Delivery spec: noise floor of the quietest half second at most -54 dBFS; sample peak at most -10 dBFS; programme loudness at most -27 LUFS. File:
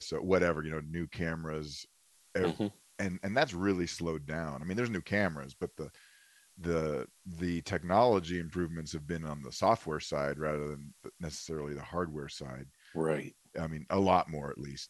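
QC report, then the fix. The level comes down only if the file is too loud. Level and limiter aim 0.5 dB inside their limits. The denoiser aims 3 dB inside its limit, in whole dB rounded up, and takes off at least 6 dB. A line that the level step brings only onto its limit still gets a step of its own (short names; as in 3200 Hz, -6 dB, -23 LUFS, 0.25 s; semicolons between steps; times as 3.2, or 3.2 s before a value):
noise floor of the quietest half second -66 dBFS: OK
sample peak -11.5 dBFS: OK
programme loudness -34.0 LUFS: OK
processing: none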